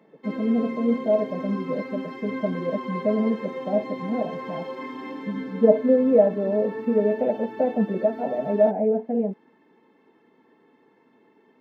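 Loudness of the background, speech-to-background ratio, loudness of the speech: −34.5 LKFS, 10.5 dB, −24.0 LKFS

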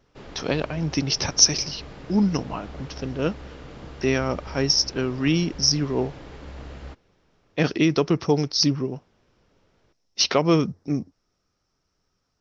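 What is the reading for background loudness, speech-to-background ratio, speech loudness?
−41.5 LKFS, 18.5 dB, −23.0 LKFS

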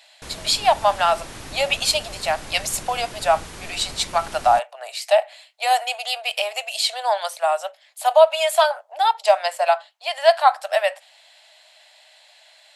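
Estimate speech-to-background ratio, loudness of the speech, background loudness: 16.0 dB, −21.0 LKFS, −37.0 LKFS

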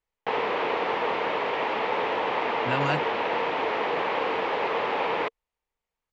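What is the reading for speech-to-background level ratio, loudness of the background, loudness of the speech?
−4.0 dB, −27.0 LKFS, −31.0 LKFS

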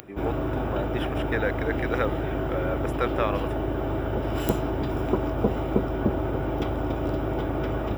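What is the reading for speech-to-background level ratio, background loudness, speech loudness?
−3.5 dB, −28.0 LKFS, −31.5 LKFS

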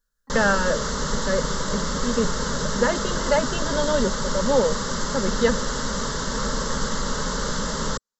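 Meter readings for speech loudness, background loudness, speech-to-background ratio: −25.5 LKFS, −26.5 LKFS, 1.0 dB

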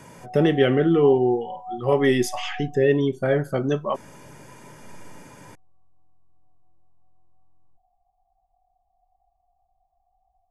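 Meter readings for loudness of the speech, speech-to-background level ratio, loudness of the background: −21.5 LKFS, 15.0 dB, −36.5 LKFS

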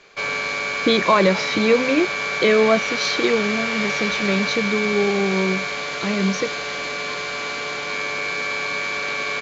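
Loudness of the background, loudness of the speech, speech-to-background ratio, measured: −23.5 LKFS, −21.0 LKFS, 2.5 dB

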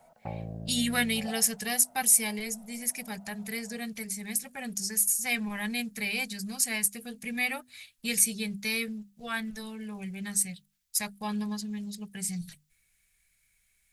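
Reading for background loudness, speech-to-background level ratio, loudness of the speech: −41.5 LKFS, 12.5 dB, −29.0 LKFS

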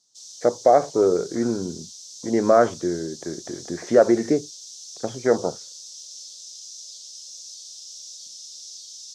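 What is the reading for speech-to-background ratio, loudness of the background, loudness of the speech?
16.5 dB, −38.0 LKFS, −21.5 LKFS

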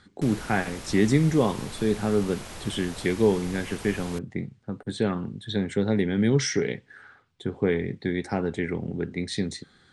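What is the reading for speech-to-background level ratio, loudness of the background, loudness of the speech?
13.0 dB, −40.0 LKFS, −27.0 LKFS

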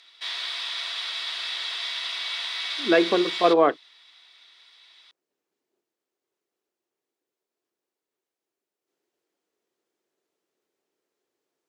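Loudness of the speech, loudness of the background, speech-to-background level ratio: −21.5 LKFS, −29.0 LKFS, 7.5 dB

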